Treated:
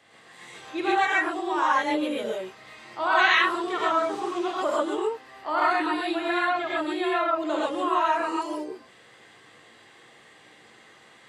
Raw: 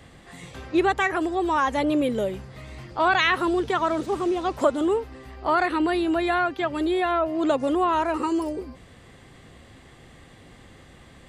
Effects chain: weighting filter A; non-linear reverb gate 0.16 s rising, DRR -6.5 dB; gain -7 dB

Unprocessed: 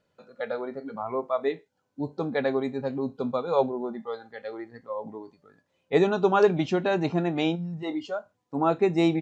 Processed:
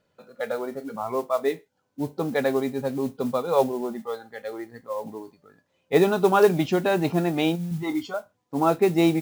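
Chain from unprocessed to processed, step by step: 7.71–8.14 comb 0.9 ms, depth 85%; modulation noise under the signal 24 dB; gain +2.5 dB

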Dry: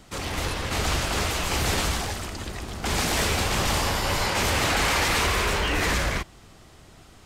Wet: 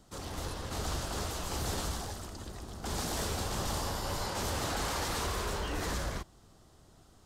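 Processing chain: bell 2300 Hz -10.5 dB 0.87 oct; gain -9 dB

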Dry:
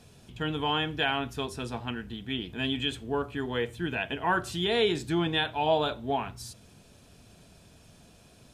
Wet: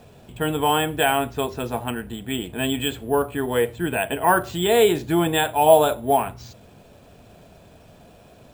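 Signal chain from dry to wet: LPF 4000 Hz 12 dB/oct; bell 620 Hz +7.5 dB 1.3 oct; careless resampling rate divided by 4×, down none, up hold; gain +5 dB

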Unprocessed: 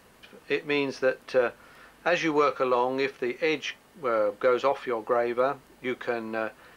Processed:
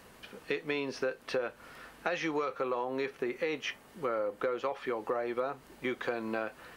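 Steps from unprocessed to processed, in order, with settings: 2.45–4.69 dynamic EQ 4400 Hz, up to -4 dB, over -47 dBFS, Q 0.8; compressor, threshold -31 dBFS, peak gain reduction 12.5 dB; gain +1 dB

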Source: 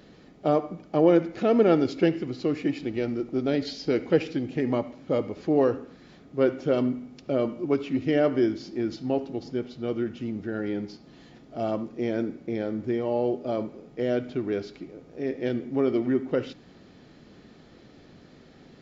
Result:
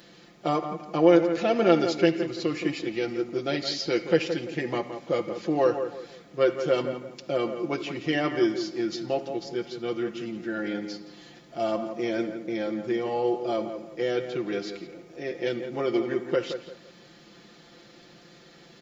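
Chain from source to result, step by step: tilt +2.5 dB/oct; comb 5.8 ms, depth 76%; tape echo 0.17 s, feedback 34%, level -7.5 dB, low-pass 1700 Hz

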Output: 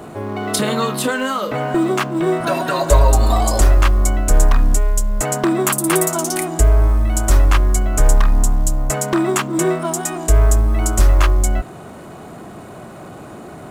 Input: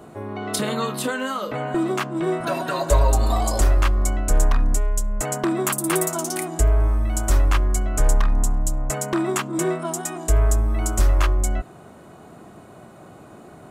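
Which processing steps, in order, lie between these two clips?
G.711 law mismatch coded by mu; gain +5 dB

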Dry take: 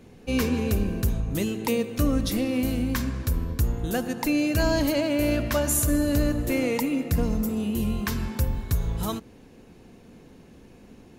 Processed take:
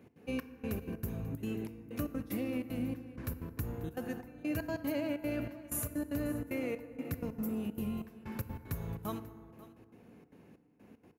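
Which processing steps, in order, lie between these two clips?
HPF 100 Hz 12 dB/oct; band shelf 5400 Hz -8.5 dB; compressor, threshold -24 dBFS, peak gain reduction 5 dB; step gate "x.xxx...xx.x.xxx" 189 bpm -24 dB; on a send: echo 0.539 s -18.5 dB; on the sum: FDN reverb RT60 2.2 s, low-frequency decay 1.1×, high-frequency decay 0.4×, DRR 12 dB; gain -7.5 dB

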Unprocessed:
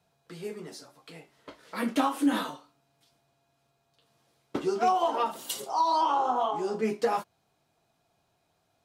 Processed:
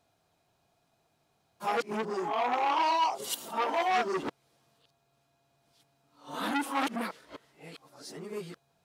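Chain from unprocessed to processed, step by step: whole clip reversed; short-mantissa float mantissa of 6-bit; core saturation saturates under 1800 Hz

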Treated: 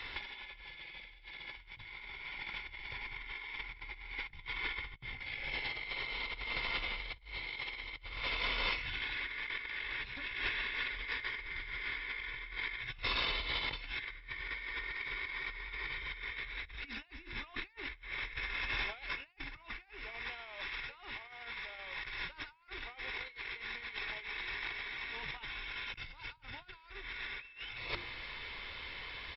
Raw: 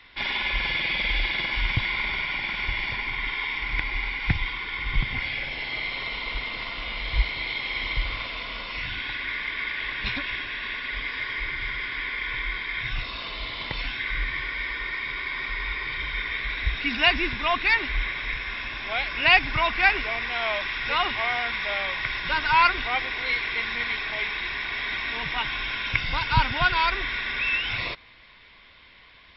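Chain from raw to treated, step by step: notches 50/100/150/200/250/300/350 Hz; comb 2.3 ms, depth 33%; negative-ratio compressor -36 dBFS, ratio -0.5; gain -4.5 dB

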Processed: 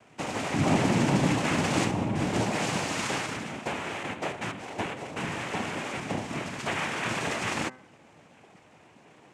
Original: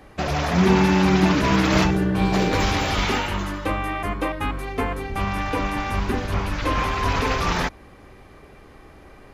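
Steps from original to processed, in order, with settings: noise vocoder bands 4; de-hum 128.2 Hz, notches 16; gain -6.5 dB

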